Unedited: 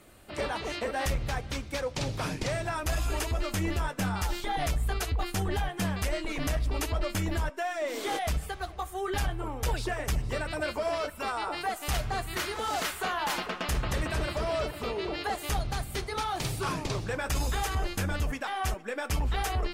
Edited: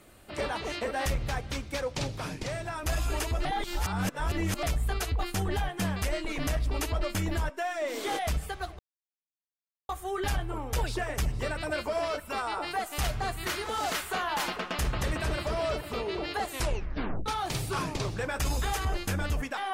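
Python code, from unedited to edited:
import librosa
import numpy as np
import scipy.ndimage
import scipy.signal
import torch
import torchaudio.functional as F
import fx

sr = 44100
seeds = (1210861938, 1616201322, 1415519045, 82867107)

y = fx.edit(x, sr, fx.clip_gain(start_s=2.07, length_s=0.76, db=-3.5),
    fx.reverse_span(start_s=3.45, length_s=1.18),
    fx.insert_silence(at_s=8.79, length_s=1.1),
    fx.tape_stop(start_s=15.39, length_s=0.77), tone=tone)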